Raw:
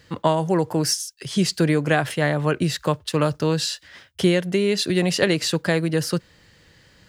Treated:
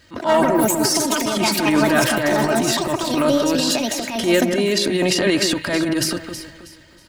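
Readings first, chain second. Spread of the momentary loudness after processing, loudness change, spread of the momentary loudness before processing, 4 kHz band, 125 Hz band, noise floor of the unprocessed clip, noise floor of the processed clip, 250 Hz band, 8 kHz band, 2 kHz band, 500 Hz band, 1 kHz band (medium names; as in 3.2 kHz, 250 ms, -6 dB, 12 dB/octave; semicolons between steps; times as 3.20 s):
5 LU, +3.5 dB, 5 LU, +5.0 dB, -5.0 dB, -55 dBFS, -48 dBFS, +4.0 dB, +6.5 dB, +4.5 dB, +3.5 dB, +5.5 dB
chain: ever faster or slower copies 84 ms, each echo +6 st, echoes 3, each echo -6 dB; comb 3.2 ms, depth 68%; transient shaper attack -11 dB, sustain +9 dB; de-hum 53.06 Hz, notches 3; on a send: echo whose repeats swap between lows and highs 160 ms, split 2.1 kHz, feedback 55%, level -6.5 dB; on the sum: trim +1 dB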